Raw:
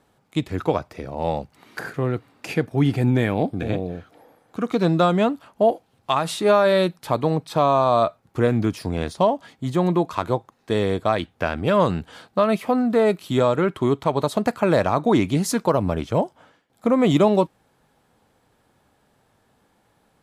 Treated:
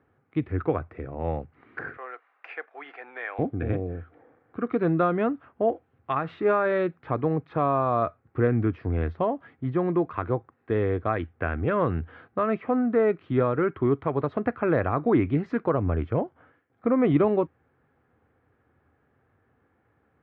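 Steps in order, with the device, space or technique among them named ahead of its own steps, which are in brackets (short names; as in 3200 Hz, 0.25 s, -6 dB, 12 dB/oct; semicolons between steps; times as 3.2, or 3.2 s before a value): bass cabinet (speaker cabinet 67–2000 Hz, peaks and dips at 83 Hz +8 dB, 190 Hz -9 dB, 610 Hz -7 dB, 910 Hz -9 dB); 1.97–3.39 HPF 680 Hz 24 dB/oct; gain -1.5 dB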